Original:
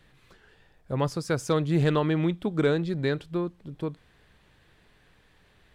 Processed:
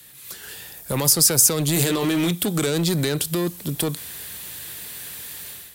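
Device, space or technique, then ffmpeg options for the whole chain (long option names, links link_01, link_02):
FM broadcast chain: -filter_complex "[0:a]asettb=1/sr,asplit=3[link_01][link_02][link_03];[link_01]atrim=end=1.744[link_04];[link_02]atrim=start=1.74:end=2.31,asetpts=PTS-STARTPTS,afade=type=in:duration=0.004:curve=qsin,afade=type=out:start_time=0.566:duration=0.004:curve=qsin,asplit=2[link_05][link_06];[link_06]adelay=16,volume=-5dB[link_07];[link_05][link_07]amix=inputs=2:normalize=0,atrim=end_sample=25137[link_08];[link_03]atrim=start=2.306[link_09];[link_04][link_08]acrossfade=duration=0.004:curve1=hsin:curve2=qsin[link_10];[link_10][link_09]acrossfade=duration=0.004:curve1=qsin:curve2=hsin,highpass=74,dynaudnorm=framelen=250:gausssize=3:maxgain=12dB,acrossover=split=160|980|3900[link_11][link_12][link_13][link_14];[link_11]acompressor=threshold=-30dB:ratio=4[link_15];[link_12]acompressor=threshold=-18dB:ratio=4[link_16];[link_13]acompressor=threshold=-34dB:ratio=4[link_17];[link_14]acompressor=threshold=-42dB:ratio=4[link_18];[link_15][link_16][link_17][link_18]amix=inputs=4:normalize=0,aemphasis=mode=production:type=75fm,alimiter=limit=-16.5dB:level=0:latency=1:release=20,asoftclip=type=hard:threshold=-20dB,lowpass=frequency=15000:width=0.5412,lowpass=frequency=15000:width=1.3066,aemphasis=mode=production:type=75fm,volume=3.5dB"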